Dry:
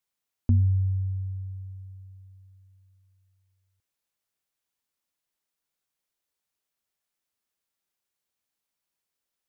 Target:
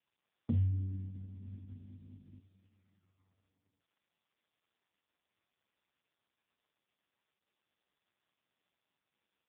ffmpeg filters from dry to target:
-filter_complex "[0:a]asettb=1/sr,asplit=3[a][b][c];[a]atrim=end=1.044[d];[b]atrim=start=1.04:end=2.4,asetpts=PTS-STARTPTS,afade=t=in:d=0.004:c=qsin,afade=t=out:st=1.356:d=0.004:c=qsin,aeval=exprs='val(0)+0.00631*(sin(2*PI*50*n/s)+sin(2*PI*2*50*n/s)/2+sin(2*PI*3*50*n/s)/3+sin(2*PI*4*50*n/s)/4+sin(2*PI*5*50*n/s)/5)':c=same[e];[c]atrim=start=2.396[f];[d][e]acrossfade=d=0.004:c1=hsin:c2=qsin[g];[g][f]acrossfade=d=0.004:c1=qsin:c2=hsin,volume=-4.5dB" -ar 8000 -c:a libopencore_amrnb -b:a 4750

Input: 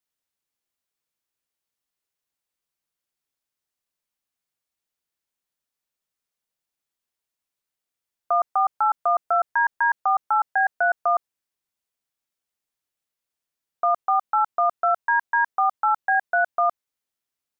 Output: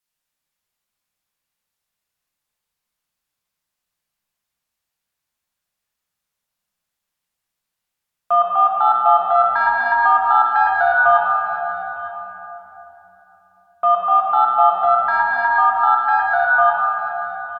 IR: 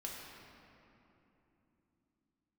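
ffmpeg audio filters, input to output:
-filter_complex "[0:a]asetnsamples=n=441:p=0,asendcmd='14.85 equalizer g -13.5',equalizer=f=350:t=o:w=1.1:g=-6.5,acontrast=80,asplit=2[a][b];[b]adelay=34,volume=-12dB[c];[a][c]amix=inputs=2:normalize=0,aecho=1:1:905:0.158[d];[1:a]atrim=start_sample=2205,asetrate=34839,aresample=44100[e];[d][e]afir=irnorm=-1:irlink=0"

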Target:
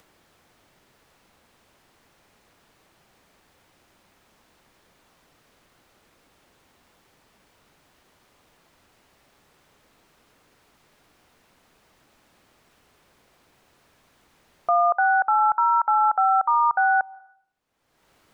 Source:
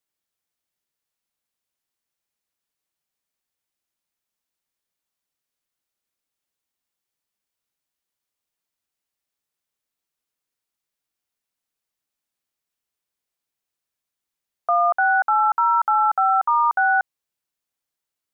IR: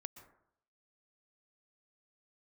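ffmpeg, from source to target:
-filter_complex "[0:a]lowpass=f=1.1k:p=1,acompressor=mode=upward:threshold=-37dB:ratio=2.5,asplit=2[a][b];[1:a]atrim=start_sample=2205[c];[b][c]afir=irnorm=-1:irlink=0,volume=-9dB[d];[a][d]amix=inputs=2:normalize=0"

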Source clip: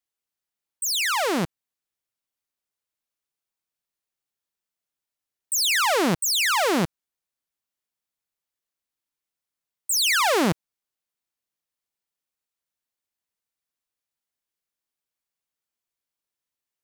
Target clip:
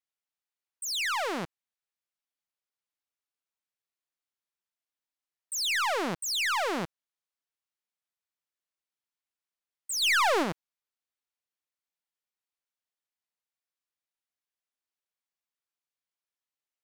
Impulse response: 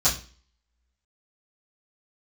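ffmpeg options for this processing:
-filter_complex "[0:a]asplit=3[a][b][c];[a]afade=t=out:st=10.01:d=0.02[d];[b]acontrast=28,afade=t=in:st=10.01:d=0.02,afade=t=out:st=10.42:d=0.02[e];[c]afade=t=in:st=10.42:d=0.02[f];[d][e][f]amix=inputs=3:normalize=0,asplit=2[g][h];[h]highpass=f=720:p=1,volume=8dB,asoftclip=type=tanh:threshold=-10.5dB[i];[g][i]amix=inputs=2:normalize=0,lowpass=f=4.6k:p=1,volume=-6dB,volume=-8dB"

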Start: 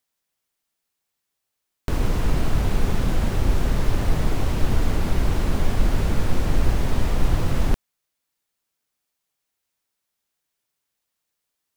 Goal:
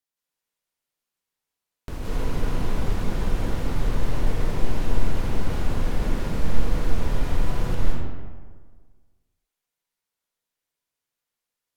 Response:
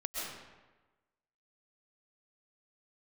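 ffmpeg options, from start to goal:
-filter_complex "[1:a]atrim=start_sample=2205,asetrate=33516,aresample=44100[a];[0:a][a]afir=irnorm=-1:irlink=0,volume=-8.5dB"

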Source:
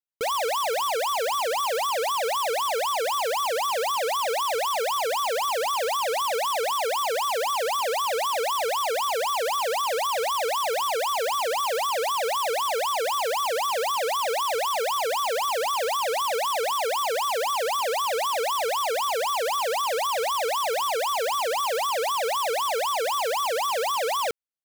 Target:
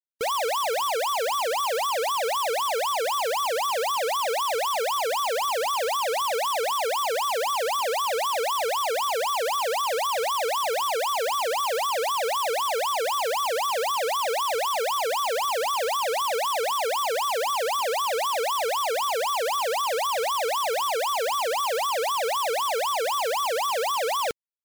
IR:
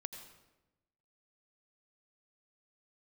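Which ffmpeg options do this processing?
-af "areverse,acompressor=mode=upward:threshold=-33dB:ratio=2.5,areverse,afftfilt=real='re*gte(hypot(re,im),0.00316)':imag='im*gte(hypot(re,im),0.00316)':win_size=1024:overlap=0.75"

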